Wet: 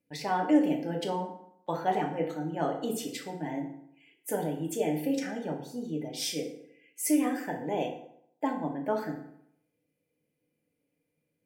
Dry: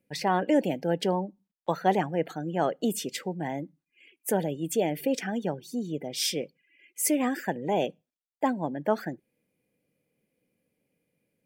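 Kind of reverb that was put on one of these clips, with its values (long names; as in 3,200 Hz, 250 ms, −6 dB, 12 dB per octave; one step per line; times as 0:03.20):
feedback delay network reverb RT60 0.72 s, low-frequency decay 1×, high-frequency decay 0.7×, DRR 0 dB
level −7 dB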